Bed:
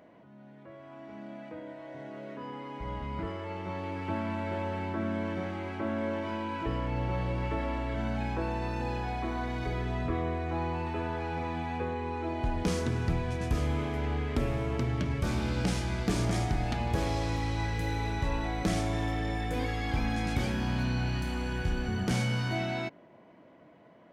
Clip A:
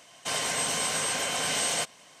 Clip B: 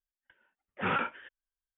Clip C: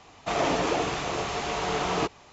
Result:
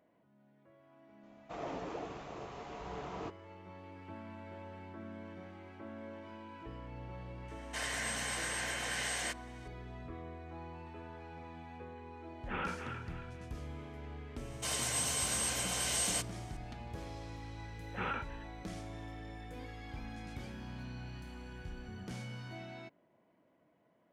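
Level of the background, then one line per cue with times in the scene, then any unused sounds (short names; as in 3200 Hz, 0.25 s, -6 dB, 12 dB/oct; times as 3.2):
bed -15 dB
1.23 add C -14.5 dB + high shelf 2100 Hz -11.5 dB
7.48 add A -11.5 dB + bell 1800 Hz +12 dB 0.49 oct
11.68 add B -9 dB + thinning echo 0.275 s, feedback 41%, high-pass 790 Hz, level -5.5 dB
14.37 add A -9.5 dB + high shelf 6800 Hz +9.5 dB
17.15 add B -8 dB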